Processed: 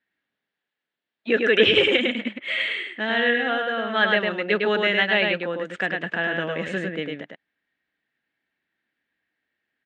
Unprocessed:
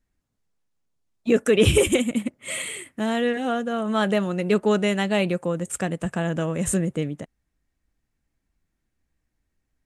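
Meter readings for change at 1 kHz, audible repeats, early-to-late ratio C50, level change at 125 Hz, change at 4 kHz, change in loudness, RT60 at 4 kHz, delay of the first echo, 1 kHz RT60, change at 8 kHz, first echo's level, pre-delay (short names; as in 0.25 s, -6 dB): +1.5 dB, 1, none, -10.5 dB, +7.5 dB, +1.5 dB, none, 0.104 s, none, under -20 dB, -3.5 dB, none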